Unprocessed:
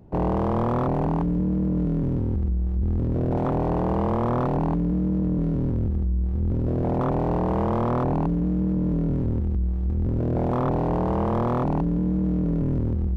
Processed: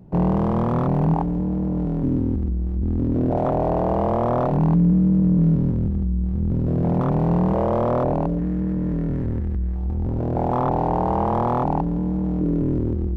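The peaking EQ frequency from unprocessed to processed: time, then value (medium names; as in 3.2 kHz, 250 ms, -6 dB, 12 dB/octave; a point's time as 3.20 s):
peaking EQ +9.5 dB 0.57 oct
170 Hz
from 1.14 s 790 Hz
from 2.03 s 270 Hz
from 3.30 s 650 Hz
from 4.51 s 170 Hz
from 7.54 s 580 Hz
from 8.39 s 1.8 kHz
from 9.75 s 820 Hz
from 12.41 s 340 Hz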